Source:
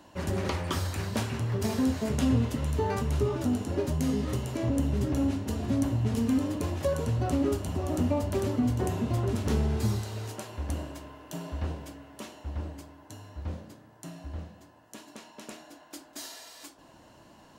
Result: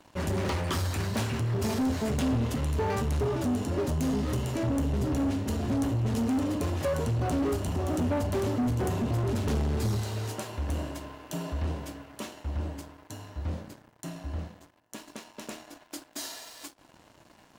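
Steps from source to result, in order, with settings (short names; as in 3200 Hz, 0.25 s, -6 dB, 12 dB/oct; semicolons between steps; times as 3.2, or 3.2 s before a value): sample leveller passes 3; gain -7.5 dB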